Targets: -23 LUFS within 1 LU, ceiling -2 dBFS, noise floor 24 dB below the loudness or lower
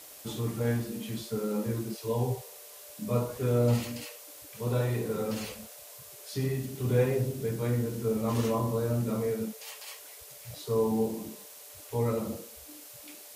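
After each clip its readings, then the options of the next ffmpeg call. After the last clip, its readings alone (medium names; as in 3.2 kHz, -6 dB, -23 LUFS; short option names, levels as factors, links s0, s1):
noise floor -49 dBFS; noise floor target -55 dBFS; loudness -31.0 LUFS; peak level -13.5 dBFS; loudness target -23.0 LUFS
-> -af "afftdn=nr=6:nf=-49"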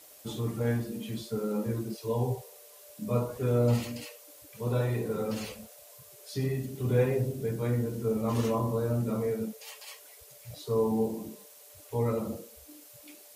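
noise floor -53 dBFS; noise floor target -55 dBFS
-> -af "afftdn=nr=6:nf=-53"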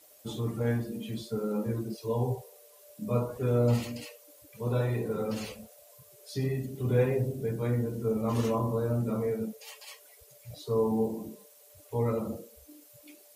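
noise floor -57 dBFS; loudness -31.0 LUFS; peak level -13.5 dBFS; loudness target -23.0 LUFS
-> -af "volume=2.51"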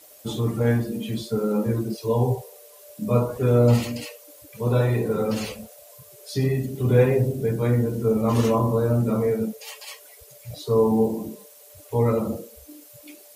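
loudness -23.0 LUFS; peak level -5.5 dBFS; noise floor -49 dBFS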